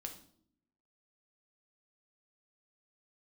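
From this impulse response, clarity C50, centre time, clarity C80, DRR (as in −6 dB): 10.0 dB, 14 ms, 13.5 dB, 3.0 dB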